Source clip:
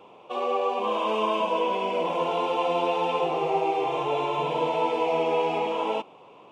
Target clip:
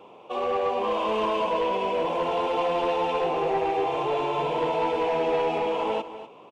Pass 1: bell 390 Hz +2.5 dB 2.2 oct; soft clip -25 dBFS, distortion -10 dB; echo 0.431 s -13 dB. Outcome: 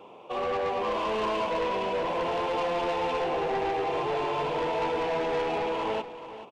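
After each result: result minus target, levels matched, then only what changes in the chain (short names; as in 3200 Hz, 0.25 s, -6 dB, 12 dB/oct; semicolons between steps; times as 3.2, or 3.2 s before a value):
echo 0.185 s late; soft clip: distortion +7 dB
change: echo 0.246 s -13 dB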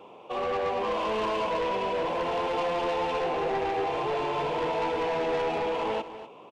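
soft clip: distortion +7 dB
change: soft clip -18.5 dBFS, distortion -17 dB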